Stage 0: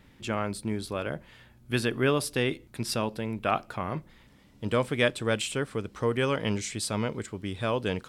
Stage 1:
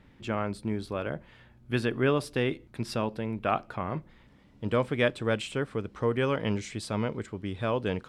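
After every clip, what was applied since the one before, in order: low-pass 2.4 kHz 6 dB/octave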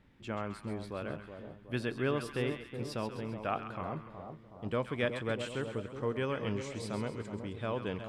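two-band feedback delay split 1 kHz, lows 370 ms, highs 133 ms, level -8 dB; trim -7 dB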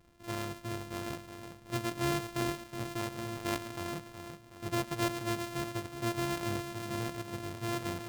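sorted samples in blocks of 128 samples

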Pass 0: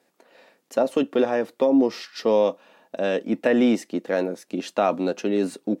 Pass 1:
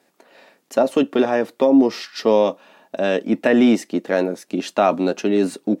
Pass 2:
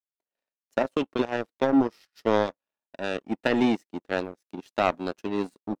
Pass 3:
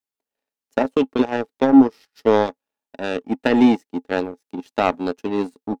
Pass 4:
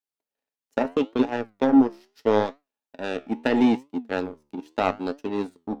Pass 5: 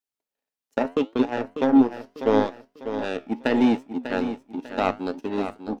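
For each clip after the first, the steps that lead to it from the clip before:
band-stop 500 Hz, Q 12; trim +5 dB
power-law waveshaper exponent 2; trim -2.5 dB
small resonant body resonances 260/440/830 Hz, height 8 dB, ringing for 65 ms; trim +3.5 dB
flange 0.77 Hz, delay 6.6 ms, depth 8.2 ms, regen +79%
feedback delay 596 ms, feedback 35%, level -10 dB

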